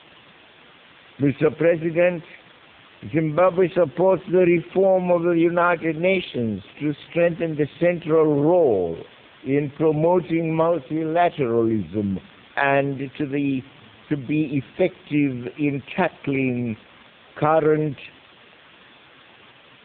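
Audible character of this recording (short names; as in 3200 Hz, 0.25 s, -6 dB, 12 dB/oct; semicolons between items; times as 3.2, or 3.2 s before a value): a quantiser's noise floor 6-bit, dither triangular; AMR-NB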